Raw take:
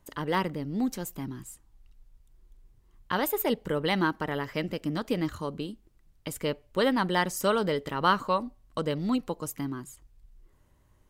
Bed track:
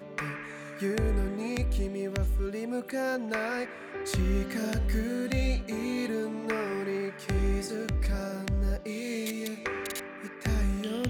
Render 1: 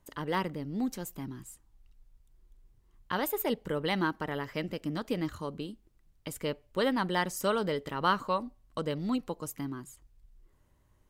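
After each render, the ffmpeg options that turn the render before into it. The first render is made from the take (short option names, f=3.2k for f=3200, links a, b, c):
-af "volume=-3.5dB"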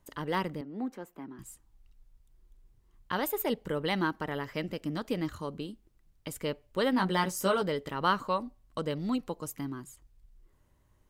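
-filter_complex "[0:a]asettb=1/sr,asplit=3[a][b][c];[a]atrim=end=0.614[d];[b]atrim=start=0.61:end=1.39,asetpts=PTS-STARTPTS,afade=t=in:d=0.004:c=qsin,afade=t=out:st=0.776:d=0.004:c=qsin,acrossover=split=220 2300:gain=0.0794 1 0.126[e][f][g];[e][f][g]amix=inputs=3:normalize=0[h];[c]atrim=start=1.386[i];[d][h]acrossfade=d=0.004:c1=hsin:c2=qsin[j];[j][i]acrossfade=d=0.004:c1=qsin:c2=hsin,asettb=1/sr,asplit=3[k][l][m];[k]atrim=end=6.914[n];[l]atrim=start=6.91:end=7.62,asetpts=PTS-STARTPTS,afade=t=in:d=0.004:c=qsin,afade=t=out:st=0.706:d=0.004:c=qsin,asplit=2[o][p];[p]adelay=16,volume=-3.5dB[q];[o][q]amix=inputs=2:normalize=0,atrim=end_sample=31311[r];[m]atrim=start=7.616[s];[n][r]acrossfade=d=0.004:c1=hsin:c2=qsin[t];[t][s]acrossfade=d=0.004:c1=qsin:c2=hsin"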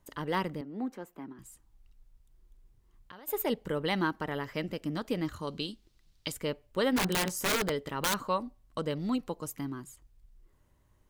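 -filter_complex "[0:a]asplit=3[a][b][c];[a]afade=t=out:st=1.32:d=0.02[d];[b]acompressor=threshold=-47dB:ratio=6:attack=3.2:release=140:knee=1:detection=peak,afade=t=in:st=1.32:d=0.02,afade=t=out:st=3.27:d=0.02[e];[c]afade=t=in:st=3.27:d=0.02[f];[d][e][f]amix=inputs=3:normalize=0,asettb=1/sr,asplit=3[g][h][i];[g]atrim=end=5.474[j];[h]atrim=start=5.47:end=6.32,asetpts=PTS-STARTPTS,afade=t=in:d=0.004:c=qsin,afade=t=out:st=0.846:d=0.004:c=qsin,equalizer=f=4.2k:t=o:w=1.6:g=14[k];[i]atrim=start=6.316[l];[j][k]acrossfade=d=0.004:c1=hsin:c2=qsin[m];[m][l]acrossfade=d=0.004:c1=qsin:c2=hsin,asplit=3[n][o][p];[n]afade=t=out:st=6.96:d=0.02[q];[o]aeval=exprs='(mod(12.6*val(0)+1,2)-1)/12.6':c=same,afade=t=in:st=6.96:d=0.02,afade=t=out:st=8.14:d=0.02[r];[p]afade=t=in:st=8.14:d=0.02[s];[q][r][s]amix=inputs=3:normalize=0"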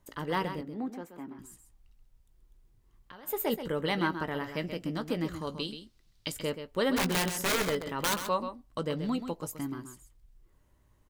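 -filter_complex "[0:a]asplit=2[a][b];[b]adelay=18,volume=-13dB[c];[a][c]amix=inputs=2:normalize=0,aecho=1:1:130:0.335"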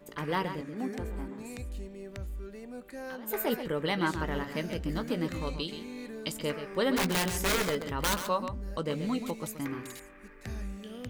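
-filter_complex "[1:a]volume=-10.5dB[a];[0:a][a]amix=inputs=2:normalize=0"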